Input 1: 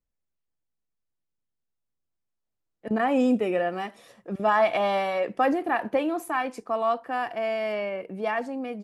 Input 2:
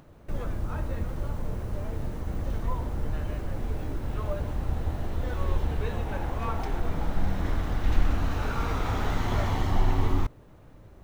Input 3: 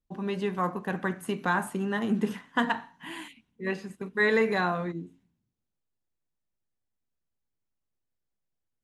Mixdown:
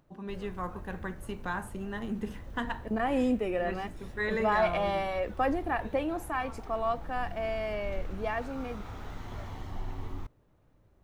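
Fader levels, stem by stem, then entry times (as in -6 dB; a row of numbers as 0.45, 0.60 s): -5.5, -14.0, -8.0 dB; 0.00, 0.00, 0.00 s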